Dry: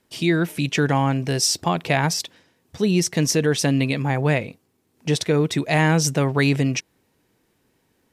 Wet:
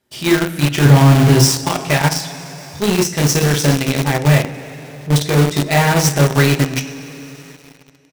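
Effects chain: 0.85–1.45 s: bass shelf 440 Hz +11 dB; 4.41–5.16 s: steep low-pass 1.4 kHz 48 dB/octave; doubling 41 ms -13 dB; de-hum 134 Hz, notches 12; on a send: delay 110 ms -19 dB; on the sum: two-slope reverb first 0.27 s, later 3.3 s, from -18 dB, DRR -1.5 dB; in parallel at -6.5 dB: companded quantiser 2-bit; on the sum: trim -5 dB

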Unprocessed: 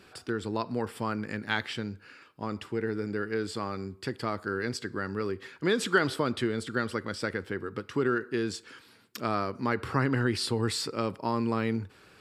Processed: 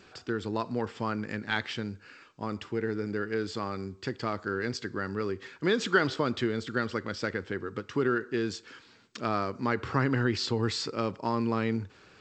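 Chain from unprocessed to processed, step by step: G.722 64 kbps 16 kHz

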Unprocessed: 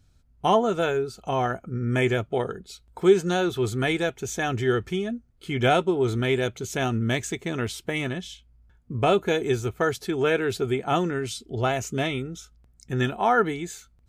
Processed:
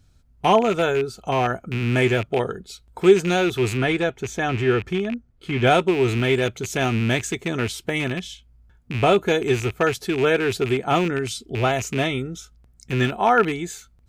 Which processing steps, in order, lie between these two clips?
rattle on loud lows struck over -32 dBFS, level -23 dBFS; 3.77–5.67 s: treble shelf 5 kHz -10.5 dB; trim +3.5 dB

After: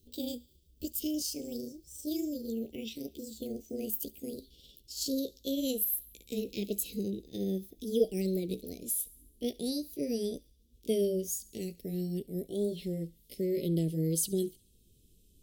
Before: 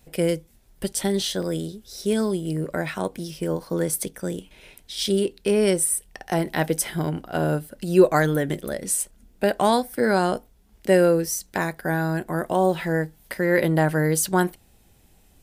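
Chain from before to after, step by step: pitch bend over the whole clip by +8 st ending unshifted; elliptic band-stop 440–3200 Hz, stop band 60 dB; feedback echo behind a high-pass 69 ms, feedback 58%, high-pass 2 kHz, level -21 dB; trim -6.5 dB

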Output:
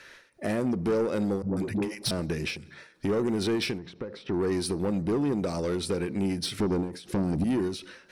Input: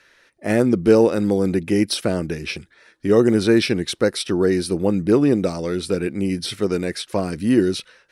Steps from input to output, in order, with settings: 6.60–7.44 s: resonant low shelf 490 Hz +13 dB, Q 1.5; in parallel at 0 dB: peak limiter -12.5 dBFS, peak gain reduction 15.5 dB; on the sum: compression 2:1, threshold -28 dBFS, peak gain reduction 14.5 dB; 1.42–2.11 s: phase dispersion highs, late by 147 ms, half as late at 320 Hz; saturation -20.5 dBFS, distortion -12 dB; 3.78–4.34 s: tape spacing loss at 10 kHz 32 dB; on a send at -19.5 dB: reverberation RT60 1.0 s, pre-delay 3 ms; on the sum: endings held to a fixed fall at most 110 dB/s; trim -1 dB

